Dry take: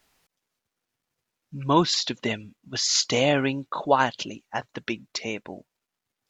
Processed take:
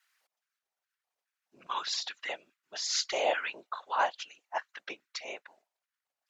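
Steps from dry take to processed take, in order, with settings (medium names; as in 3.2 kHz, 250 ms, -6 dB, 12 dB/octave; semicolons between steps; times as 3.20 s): whisper effect; LFO high-pass square 2.4 Hz 680–1500 Hz; trim -9 dB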